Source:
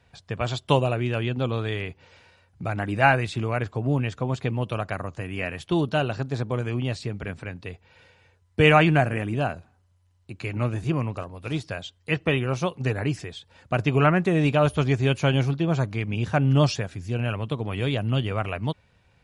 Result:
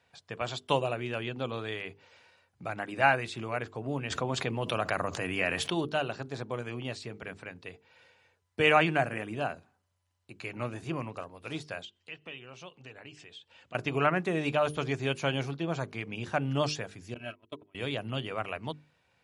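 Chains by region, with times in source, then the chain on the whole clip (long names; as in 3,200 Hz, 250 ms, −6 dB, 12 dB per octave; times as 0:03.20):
0:04.10–0:05.85: high-pass filter 54 Hz + envelope flattener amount 70%
0:11.85–0:13.75: Butterworth low-pass 8,900 Hz 48 dB per octave + parametric band 2,900 Hz +10 dB 0.56 octaves + downward compressor 2 to 1, threshold −48 dBFS
0:17.14–0:17.75: noise gate −25 dBFS, range −33 dB + comb filter 3.1 ms, depth 72%
whole clip: high-pass filter 310 Hz 6 dB per octave; mains-hum notches 50/100/150/200/250/300/350/400/450 Hz; level −4.5 dB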